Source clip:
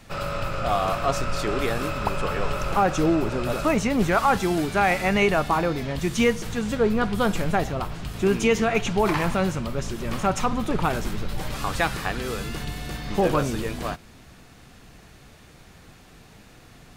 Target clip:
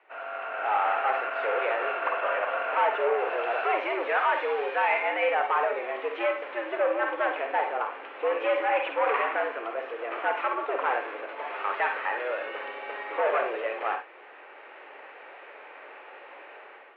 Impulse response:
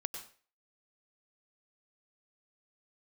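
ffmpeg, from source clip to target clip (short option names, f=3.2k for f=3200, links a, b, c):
-filter_complex "[0:a]asettb=1/sr,asplit=3[a][b][c];[a]atrim=end=3.184[d];[b]atrim=start=3.18:end=5,asetpts=PTS-STARTPTS,afade=t=in:d=0.004:c=qsin,afade=t=out:st=1.816:d=0.004:c=qsin,aemphasis=mode=production:type=75kf[e];[c]atrim=start=4.996[f];[d][e]acrossfade=d=0.004:c1=hsin:c2=qsin[g];[g][f]acrossfade=d=0.004:c1=qsin:c2=hsin,dynaudnorm=f=220:g=5:m=15dB,asoftclip=type=hard:threshold=-13dB[h];[1:a]atrim=start_sample=2205,asetrate=88200,aresample=44100[i];[h][i]afir=irnorm=-1:irlink=0,highpass=f=340:t=q:w=0.5412,highpass=f=340:t=q:w=1.307,lowpass=f=2.5k:t=q:w=0.5176,lowpass=f=2.5k:t=q:w=0.7071,lowpass=f=2.5k:t=q:w=1.932,afreqshift=110"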